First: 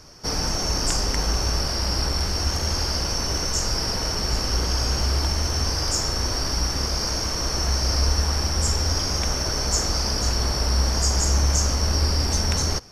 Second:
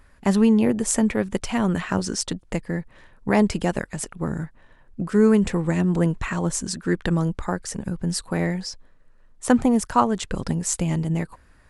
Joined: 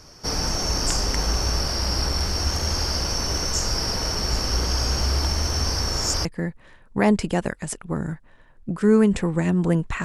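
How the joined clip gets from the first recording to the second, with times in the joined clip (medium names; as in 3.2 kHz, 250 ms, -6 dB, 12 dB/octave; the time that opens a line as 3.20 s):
first
5.80–6.25 s: reverse
6.25 s: go over to second from 2.56 s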